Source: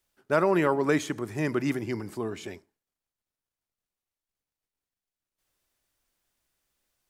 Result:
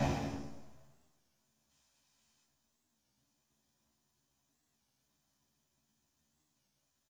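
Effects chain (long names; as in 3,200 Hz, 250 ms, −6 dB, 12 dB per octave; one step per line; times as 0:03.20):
high-pass filter 72 Hz
extreme stretch with random phases 5×, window 0.25 s, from 0:02.58
low-shelf EQ 490 Hz +11.5 dB
gain on a spectral selection 0:01.70–0:02.44, 2,200–5,700 Hz +12 dB
full-wave rectification
double-tracking delay 14 ms −4 dB
convolution reverb RT60 0.70 s, pre-delay 3 ms, DRR 3 dB
wow of a warped record 33 1/3 rpm, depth 160 cents
level +6.5 dB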